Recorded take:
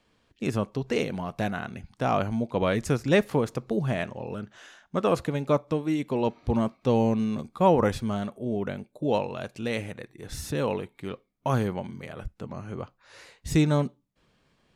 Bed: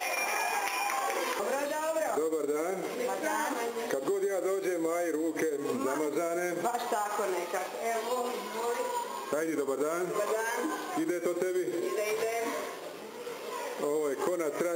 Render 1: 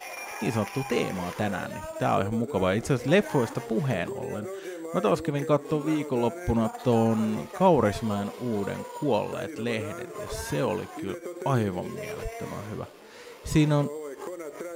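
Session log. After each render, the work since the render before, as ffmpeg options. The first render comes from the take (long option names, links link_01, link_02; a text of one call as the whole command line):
ffmpeg -i in.wav -i bed.wav -filter_complex "[1:a]volume=-6.5dB[link_01];[0:a][link_01]amix=inputs=2:normalize=0" out.wav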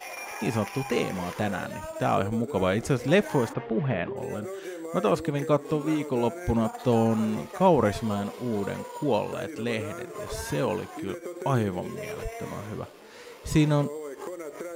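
ffmpeg -i in.wav -filter_complex "[0:a]asplit=3[link_01][link_02][link_03];[link_01]afade=type=out:start_time=3.52:duration=0.02[link_04];[link_02]lowpass=frequency=3100:width=0.5412,lowpass=frequency=3100:width=1.3066,afade=type=in:start_time=3.52:duration=0.02,afade=type=out:start_time=4.16:duration=0.02[link_05];[link_03]afade=type=in:start_time=4.16:duration=0.02[link_06];[link_04][link_05][link_06]amix=inputs=3:normalize=0,asettb=1/sr,asplit=3[link_07][link_08][link_09];[link_07]atrim=end=11.434[link_10];[link_08]atrim=start=11.43:end=12.76,asetpts=PTS-STARTPTS,afade=type=in:duration=0.004:curve=qsin,afade=type=out:start_time=1.326:duration=0.004:curve=qsin,bandreject=frequency=4600:width=12[link_11];[link_09]atrim=start=12.756[link_12];[link_10][link_11]acrossfade=duration=0.004:curve1=hsin:curve2=qsin[link_13];[link_13][link_12]acrossfade=duration=0.004:curve1=qsin:curve2=hsin" out.wav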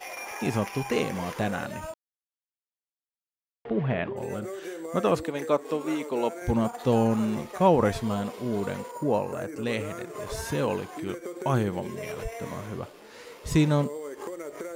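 ffmpeg -i in.wav -filter_complex "[0:a]asettb=1/sr,asplit=3[link_01][link_02][link_03];[link_01]atrim=end=5.234[link_04];[link_02]atrim=start=5.23:end=6.42,asetpts=PTS-STARTPTS,afade=type=in:duration=0.004:curve=qsin,afade=type=out:start_time=1.186:duration=0.004:curve=qsin,highpass=300[link_05];[link_03]atrim=start=6.416[link_06];[link_04][link_05]acrossfade=duration=0.004:curve1=hsin:curve2=qsin[link_07];[link_07][link_06]acrossfade=duration=0.004:curve1=qsin:curve2=hsin,asettb=1/sr,asplit=3[link_08][link_09][link_10];[link_08]atrim=end=8.914[link_11];[link_09]atrim=start=8.91:end=9.63,asetpts=PTS-STARTPTS,afade=type=in:duration=0.004:curve=qsin,afade=type=out:start_time=0.716:duration=0.004:curve=qsin,equalizer=frequency=3400:width_type=o:width=0.71:gain=-14.5[link_12];[link_10]atrim=start=9.626[link_13];[link_11][link_12]acrossfade=duration=0.004:curve1=hsin:curve2=qsin[link_14];[link_14][link_13]acrossfade=duration=0.004:curve1=qsin:curve2=hsin,asplit=3[link_15][link_16][link_17];[link_15]atrim=end=1.94,asetpts=PTS-STARTPTS,afade=type=out:start_time=1.936:duration=0.004:curve=hsin[link_18];[link_16]atrim=start=1.94:end=3.65,asetpts=PTS-STARTPTS,volume=0[link_19];[link_17]atrim=start=3.65,asetpts=PTS-STARTPTS,afade=type=in:duration=0.004:curve=hsin[link_20];[link_18][link_19][link_20]concat=n=3:v=0:a=1" out.wav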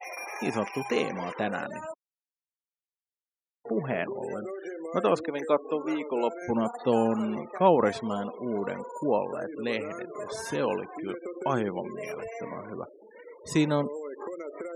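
ffmpeg -i in.wav -af "afftfilt=real='re*gte(hypot(re,im),0.0112)':imag='im*gte(hypot(re,im),0.0112)':win_size=1024:overlap=0.75,highpass=220" out.wav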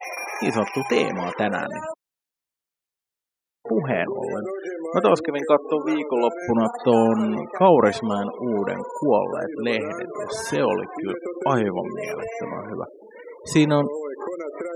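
ffmpeg -i in.wav -af "volume=7dB,alimiter=limit=-3dB:level=0:latency=1" out.wav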